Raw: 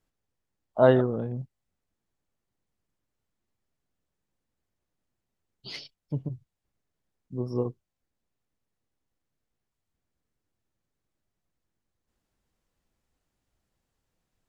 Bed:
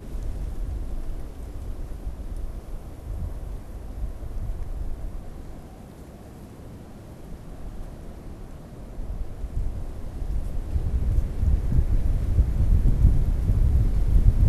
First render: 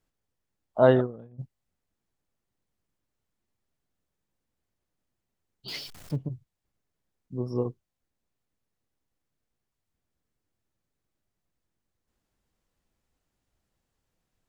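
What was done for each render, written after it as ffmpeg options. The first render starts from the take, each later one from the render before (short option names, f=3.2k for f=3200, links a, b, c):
-filter_complex "[0:a]asplit=3[a][b][c];[a]afade=t=out:st=0.94:d=0.02[d];[b]agate=range=-33dB:threshold=-21dB:ratio=3:release=100:detection=peak,afade=t=in:st=0.94:d=0.02,afade=t=out:st=1.38:d=0.02[e];[c]afade=t=in:st=1.38:d=0.02[f];[d][e][f]amix=inputs=3:normalize=0,asettb=1/sr,asplit=3[g][h][i];[g]atrim=end=5.684[j];[h]atrim=start=5.68:end=6.16,asetpts=PTS-STARTPTS,afade=t=in:d=0.004:c=qsin,afade=t=out:st=0.476:d=0.004:c=qsin,aeval=exprs='val(0)+0.5*0.00944*sgn(val(0))':c=same[k];[i]atrim=start=6.156[l];[j][k]acrossfade=d=0.004:c1=hsin:c2=qsin[m];[m][l]acrossfade=d=0.004:c1=qsin:c2=hsin"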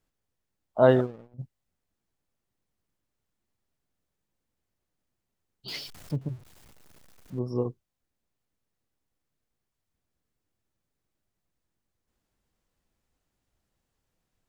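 -filter_complex "[0:a]asettb=1/sr,asplit=3[a][b][c];[a]atrim=end=0.894[d];[b]atrim=start=0.89:end=1.34,asetpts=PTS-STARTPTS,afade=t=in:d=0.004:c=qsin,afade=t=out:st=0.446:d=0.004:c=qsin,aeval=exprs='sgn(val(0))*max(abs(val(0))-0.00282,0)':c=same[e];[c]atrim=start=1.336[f];[d][e]acrossfade=d=0.004:c1=hsin:c2=qsin[g];[g][f]acrossfade=d=0.004:c1=qsin:c2=hsin,asettb=1/sr,asplit=3[h][i][j];[h]atrim=end=6.214[k];[i]atrim=start=6.21:end=7.39,asetpts=PTS-STARTPTS,afade=t=in:d=0.004:c=qsin,afade=t=out:st=1.176:d=0.004:c=qsin,aeval=exprs='val(0)+0.5*0.00398*sgn(val(0))':c=same[l];[j]atrim=start=7.386[m];[k][l]acrossfade=d=0.004:c1=hsin:c2=qsin[n];[n][m]acrossfade=d=0.004:c1=qsin:c2=hsin"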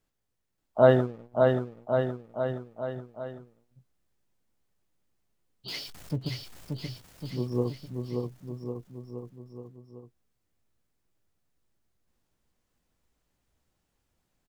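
-filter_complex "[0:a]asplit=2[a][b];[b]adelay=17,volume=-12dB[c];[a][c]amix=inputs=2:normalize=0,aecho=1:1:580|1102|1572|1995|2375:0.631|0.398|0.251|0.158|0.1"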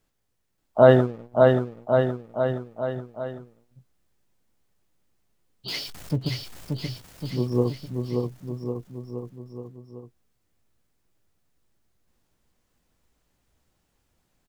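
-af "volume=5.5dB,alimiter=limit=-2dB:level=0:latency=1"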